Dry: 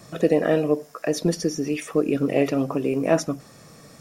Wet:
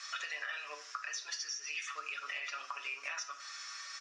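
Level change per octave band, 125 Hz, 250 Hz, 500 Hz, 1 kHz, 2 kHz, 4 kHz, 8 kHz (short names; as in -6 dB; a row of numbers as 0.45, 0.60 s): under -40 dB, under -40 dB, -36.0 dB, -10.0 dB, -3.5 dB, -3.5 dB, -6.0 dB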